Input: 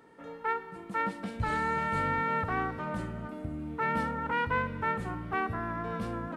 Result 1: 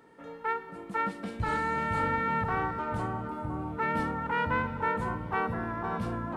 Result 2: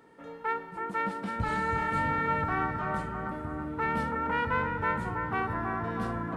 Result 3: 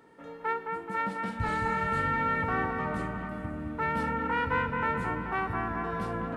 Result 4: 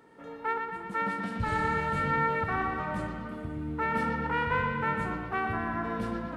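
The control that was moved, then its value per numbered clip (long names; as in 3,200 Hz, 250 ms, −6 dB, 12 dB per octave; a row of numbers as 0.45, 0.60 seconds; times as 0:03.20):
bucket-brigade delay, delay time: 506, 326, 215, 119 milliseconds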